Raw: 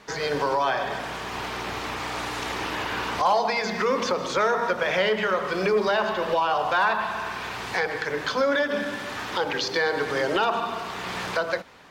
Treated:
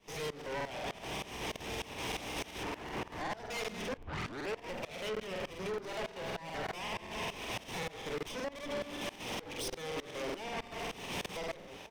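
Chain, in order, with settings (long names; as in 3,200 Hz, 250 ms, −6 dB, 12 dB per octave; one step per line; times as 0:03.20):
lower of the sound and its delayed copy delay 0.35 ms
0:02.63–0:03.27: high shelf with overshoot 2,300 Hz −8 dB, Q 1.5
0:03.97: tape start 0.60 s
0:05.83–0:06.71: comb filter 7.3 ms
downward compressor, threshold −31 dBFS, peak gain reduction 12 dB
soft clipping −36.5 dBFS, distortion −9 dB
shaped tremolo saw up 3.3 Hz, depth 95%
slap from a distant wall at 250 metres, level −13 dB
regular buffer underruns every 0.19 s, samples 2,048, repeat, from 0:00.37
level +4 dB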